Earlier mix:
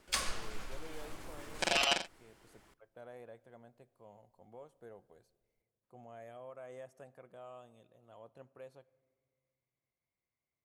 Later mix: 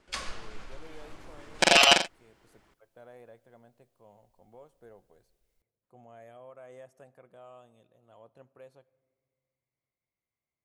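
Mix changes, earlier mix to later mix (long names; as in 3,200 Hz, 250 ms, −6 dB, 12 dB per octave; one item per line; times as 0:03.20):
first sound: add high-frequency loss of the air 64 metres
second sound +11.5 dB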